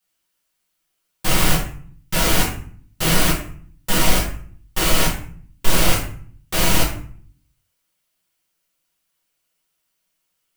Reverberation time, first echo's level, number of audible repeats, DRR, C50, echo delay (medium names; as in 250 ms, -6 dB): 0.50 s, no echo, no echo, -6.5 dB, 5.5 dB, no echo